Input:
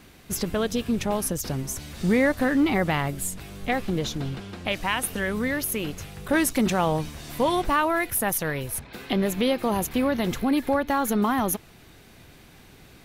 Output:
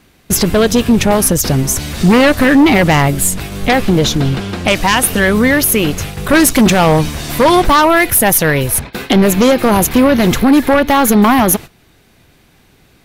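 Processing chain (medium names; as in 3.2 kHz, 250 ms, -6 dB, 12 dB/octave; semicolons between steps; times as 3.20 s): sine folder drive 6 dB, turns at -11 dBFS; gate -30 dBFS, range -16 dB; trim +7 dB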